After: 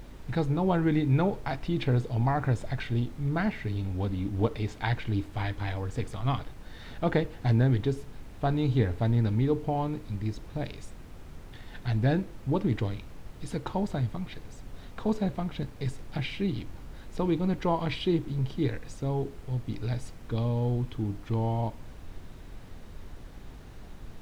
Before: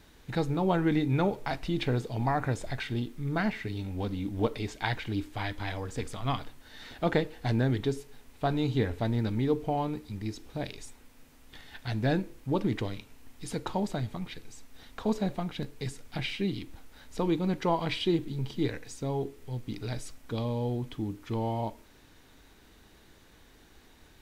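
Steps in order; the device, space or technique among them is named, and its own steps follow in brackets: car interior (peaking EQ 110 Hz +6 dB 0.98 oct; treble shelf 4.1 kHz -7 dB; brown noise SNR 12 dB)

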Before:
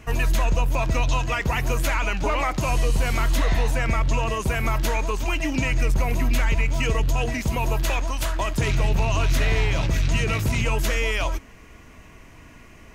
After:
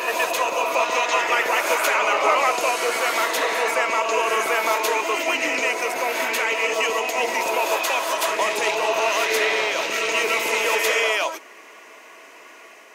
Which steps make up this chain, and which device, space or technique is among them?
ghost voice (reverse; reverberation RT60 2.0 s, pre-delay 110 ms, DRR 0.5 dB; reverse; high-pass 410 Hz 24 dB/octave); trim +4.5 dB

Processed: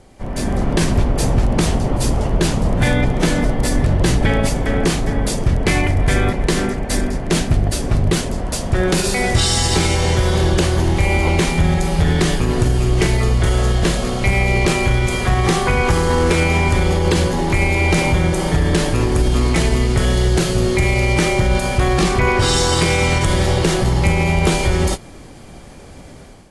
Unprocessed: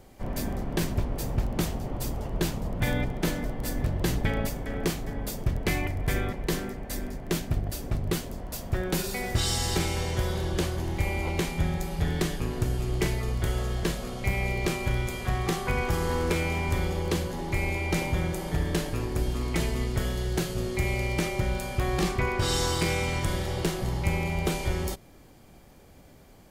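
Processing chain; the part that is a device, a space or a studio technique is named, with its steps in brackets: low-bitrate web radio (level rider gain up to 9.5 dB; peak limiter -12 dBFS, peak gain reduction 5.5 dB; trim +5.5 dB; AAC 48 kbps 24 kHz)

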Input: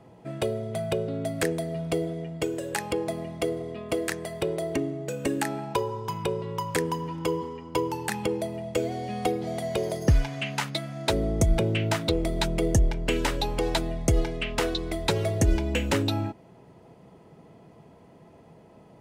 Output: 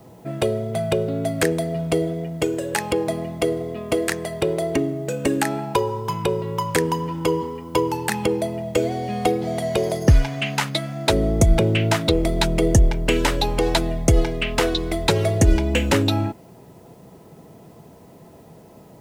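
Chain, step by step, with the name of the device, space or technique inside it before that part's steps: plain cassette with noise reduction switched in (tape noise reduction on one side only decoder only; wow and flutter 16 cents; white noise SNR 40 dB); trim +6.5 dB

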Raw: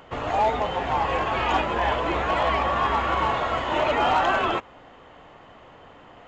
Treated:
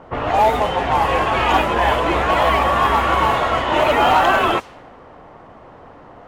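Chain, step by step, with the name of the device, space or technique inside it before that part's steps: cassette deck with a dynamic noise filter (white noise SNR 25 dB; level-controlled noise filter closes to 1.1 kHz, open at -18.5 dBFS); trim +7 dB

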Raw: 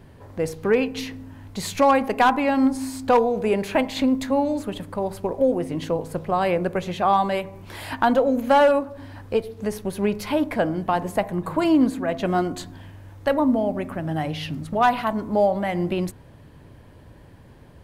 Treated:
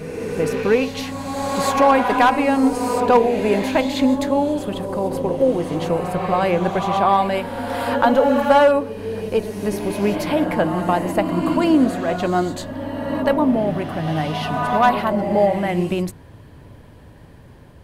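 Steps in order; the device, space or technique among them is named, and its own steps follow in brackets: reverse reverb (reverse; reverberation RT60 2.8 s, pre-delay 78 ms, DRR 4.5 dB; reverse); trim +2.5 dB

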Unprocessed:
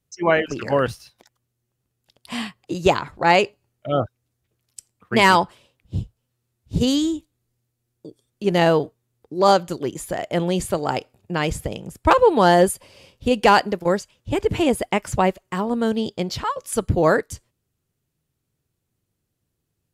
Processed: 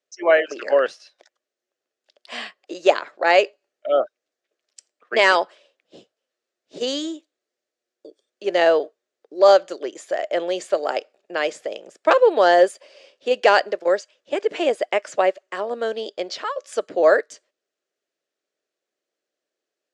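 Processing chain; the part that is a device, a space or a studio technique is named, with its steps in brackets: phone speaker on a table (cabinet simulation 370–6900 Hz, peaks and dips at 600 Hz +8 dB, 930 Hz -7 dB, 1.7 kHz +4 dB); trim -1 dB

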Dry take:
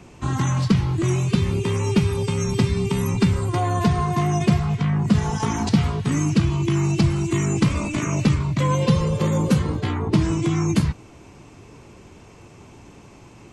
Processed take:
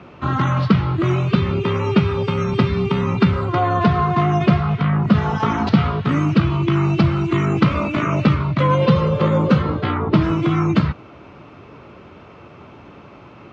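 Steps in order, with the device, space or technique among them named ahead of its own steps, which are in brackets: guitar cabinet (cabinet simulation 76–3900 Hz, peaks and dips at 110 Hz -3 dB, 590 Hz +6 dB, 1.3 kHz +10 dB); trim +3.5 dB

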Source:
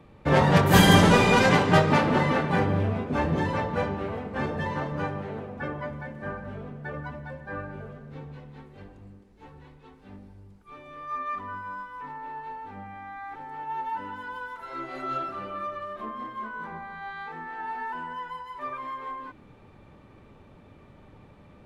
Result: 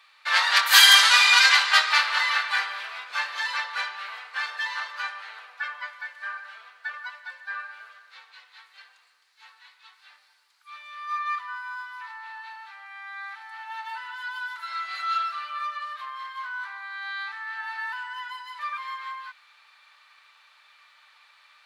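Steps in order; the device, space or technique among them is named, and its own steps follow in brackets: headphones lying on a table (high-pass 1.3 kHz 24 dB/octave; peaking EQ 4.3 kHz +10 dB 0.51 oct); trim +7.5 dB

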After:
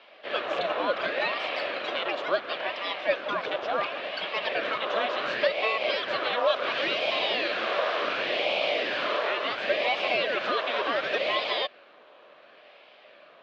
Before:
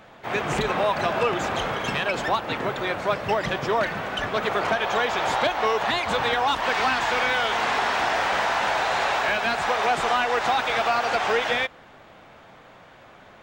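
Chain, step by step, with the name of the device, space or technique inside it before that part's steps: voice changer toy (ring modulator with a swept carrier 890 Hz, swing 75%, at 0.7 Hz; cabinet simulation 510–4000 Hz, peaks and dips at 590 Hz +9 dB, 880 Hz -9 dB, 1.4 kHz -4 dB, 2 kHz -7 dB); trim +1.5 dB

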